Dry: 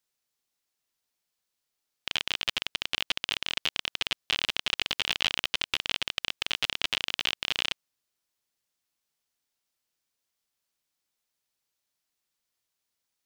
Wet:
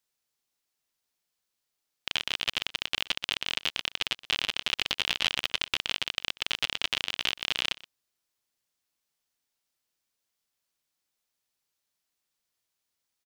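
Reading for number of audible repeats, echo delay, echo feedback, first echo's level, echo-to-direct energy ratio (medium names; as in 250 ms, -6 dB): 1, 123 ms, no regular repeats, -20.0 dB, -20.0 dB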